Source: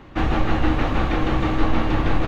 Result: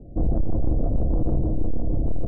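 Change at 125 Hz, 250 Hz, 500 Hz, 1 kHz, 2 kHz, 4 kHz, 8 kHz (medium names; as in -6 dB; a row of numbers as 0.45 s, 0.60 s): -1.0 dB, -6.0 dB, -6.0 dB, -17.5 dB, under -40 dB, under -40 dB, no reading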